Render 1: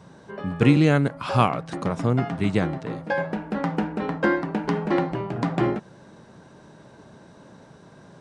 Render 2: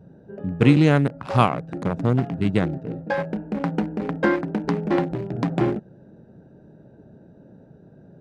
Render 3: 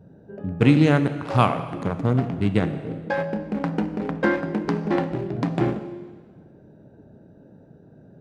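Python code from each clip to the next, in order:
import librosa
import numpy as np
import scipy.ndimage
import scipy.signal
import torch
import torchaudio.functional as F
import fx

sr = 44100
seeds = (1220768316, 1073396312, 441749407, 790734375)

y1 = fx.wiener(x, sr, points=41)
y1 = y1 * librosa.db_to_amplitude(2.0)
y2 = fx.rev_plate(y1, sr, seeds[0], rt60_s=1.5, hf_ratio=1.0, predelay_ms=0, drr_db=9.0)
y2 = y2 * librosa.db_to_amplitude(-1.0)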